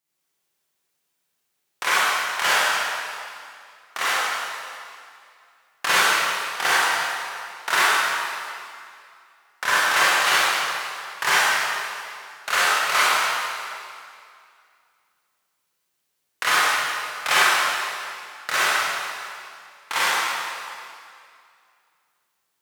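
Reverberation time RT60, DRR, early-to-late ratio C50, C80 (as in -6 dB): 2.3 s, -10.0 dB, -6.5 dB, -3.5 dB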